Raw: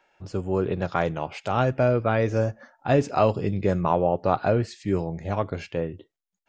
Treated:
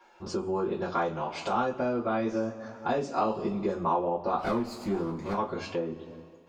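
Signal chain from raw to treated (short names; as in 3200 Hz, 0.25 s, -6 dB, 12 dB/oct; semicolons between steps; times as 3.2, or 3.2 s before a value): 4.38–5.33 minimum comb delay 0.43 ms; two-slope reverb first 0.21 s, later 1.6 s, from -22 dB, DRR -7 dB; compressor 2.5:1, threshold -31 dBFS, peak gain reduction 15 dB; ten-band EQ 125 Hz -12 dB, 250 Hz +8 dB, 500 Hz -4 dB, 1000 Hz +7 dB, 2000 Hz -6 dB, 4000 Hz +3 dB; gain -1.5 dB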